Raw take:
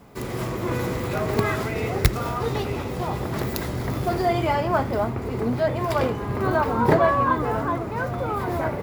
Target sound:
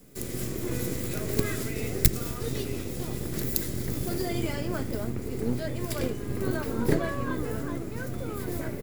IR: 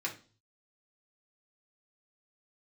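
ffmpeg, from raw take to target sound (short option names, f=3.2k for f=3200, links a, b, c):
-filter_complex "[0:a]firequalizer=gain_entry='entry(300,0);entry(830,-22);entry(1600,-9);entry(7700,6)':delay=0.05:min_phase=1,acrossover=split=380|1800|2100[a][b][c][d];[a]aeval=exprs='max(val(0),0)':c=same[e];[e][b][c][d]amix=inputs=4:normalize=0"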